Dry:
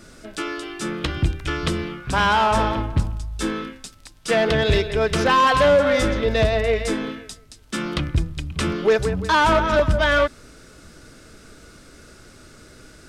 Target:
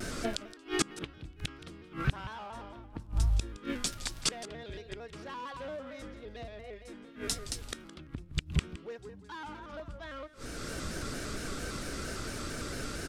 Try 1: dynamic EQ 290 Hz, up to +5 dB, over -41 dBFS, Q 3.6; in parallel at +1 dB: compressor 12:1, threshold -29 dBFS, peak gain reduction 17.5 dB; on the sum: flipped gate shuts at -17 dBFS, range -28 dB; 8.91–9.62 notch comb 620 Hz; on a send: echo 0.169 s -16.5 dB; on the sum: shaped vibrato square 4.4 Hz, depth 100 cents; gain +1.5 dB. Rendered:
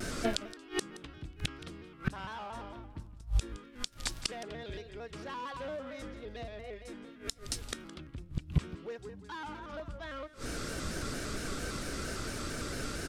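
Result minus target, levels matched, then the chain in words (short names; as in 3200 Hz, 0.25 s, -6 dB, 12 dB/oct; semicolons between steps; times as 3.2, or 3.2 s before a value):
compressor: peak gain reduction -10 dB
dynamic EQ 290 Hz, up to +5 dB, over -41 dBFS, Q 3.6; in parallel at +1 dB: compressor 12:1, threshold -40 dBFS, peak gain reduction 27.5 dB; on the sum: flipped gate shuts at -17 dBFS, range -28 dB; 8.91–9.62 notch comb 620 Hz; on a send: echo 0.169 s -16.5 dB; on the sum: shaped vibrato square 4.4 Hz, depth 100 cents; gain +1.5 dB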